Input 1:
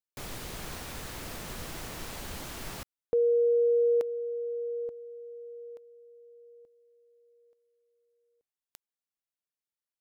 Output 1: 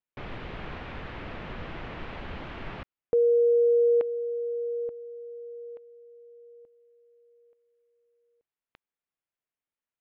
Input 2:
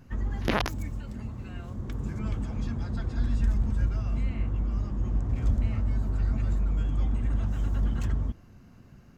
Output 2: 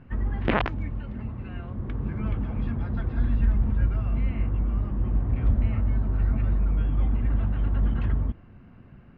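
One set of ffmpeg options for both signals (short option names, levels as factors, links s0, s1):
-af "lowpass=f=2900:w=0.5412,lowpass=f=2900:w=1.3066,volume=1.41"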